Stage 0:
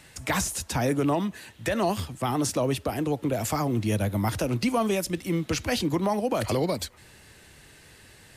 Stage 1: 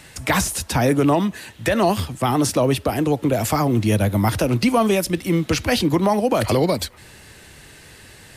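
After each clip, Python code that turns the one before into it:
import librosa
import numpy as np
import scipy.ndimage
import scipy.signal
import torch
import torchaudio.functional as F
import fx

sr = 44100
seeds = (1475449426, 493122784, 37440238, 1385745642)

y = fx.dynamic_eq(x, sr, hz=6900.0, q=2.4, threshold_db=-48.0, ratio=4.0, max_db=-4)
y = y * librosa.db_to_amplitude(7.5)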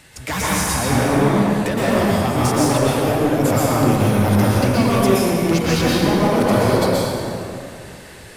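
y = np.clip(10.0 ** (17.0 / 20.0) * x, -1.0, 1.0) / 10.0 ** (17.0 / 20.0)
y = fx.rev_plate(y, sr, seeds[0], rt60_s=2.7, hf_ratio=0.55, predelay_ms=105, drr_db=-7.5)
y = y * librosa.db_to_amplitude(-3.5)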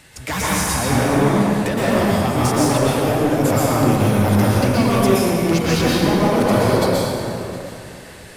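y = x + 10.0 ** (-19.0 / 20.0) * np.pad(x, (int(713 * sr / 1000.0), 0))[:len(x)]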